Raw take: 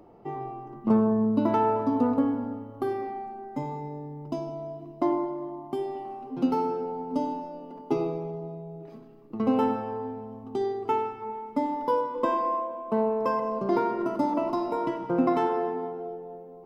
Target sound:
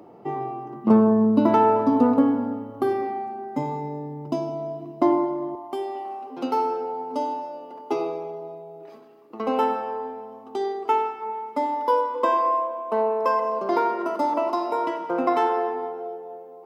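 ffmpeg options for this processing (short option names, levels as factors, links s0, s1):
-af "asetnsamples=n=441:p=0,asendcmd='5.55 highpass f 480',highpass=140,volume=2"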